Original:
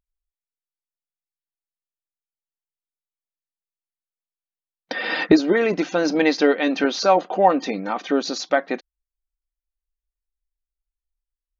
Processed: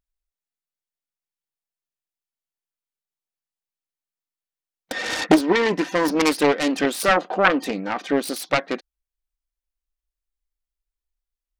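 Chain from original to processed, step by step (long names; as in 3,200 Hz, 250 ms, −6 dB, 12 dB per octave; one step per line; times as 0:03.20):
phase distortion by the signal itself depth 0.51 ms
0:05.43–0:06.12: hollow resonant body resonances 980/1,800 Hz, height 12 dB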